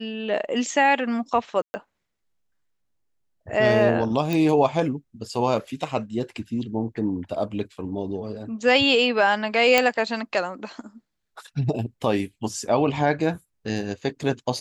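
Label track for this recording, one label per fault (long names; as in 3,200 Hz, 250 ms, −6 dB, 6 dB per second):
1.620000	1.740000	drop-out 120 ms
4.330000	4.330000	click
9.780000	9.780000	click −3 dBFS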